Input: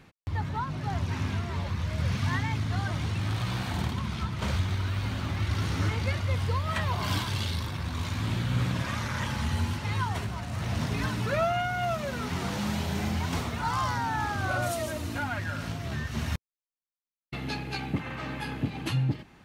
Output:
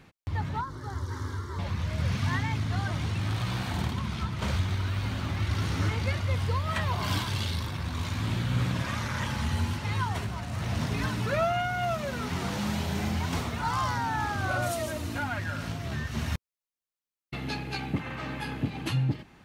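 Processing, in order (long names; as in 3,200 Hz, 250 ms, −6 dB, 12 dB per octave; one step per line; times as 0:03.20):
0:00.61–0:01.59: phaser with its sweep stopped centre 690 Hz, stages 6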